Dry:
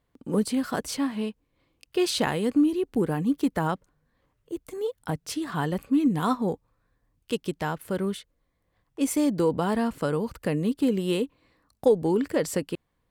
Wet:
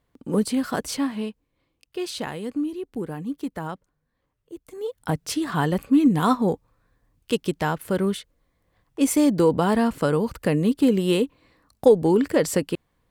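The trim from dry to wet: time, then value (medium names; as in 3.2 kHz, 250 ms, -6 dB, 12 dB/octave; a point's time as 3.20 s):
0.99 s +2.5 dB
1.98 s -5.5 dB
4.64 s -5.5 dB
5.11 s +5 dB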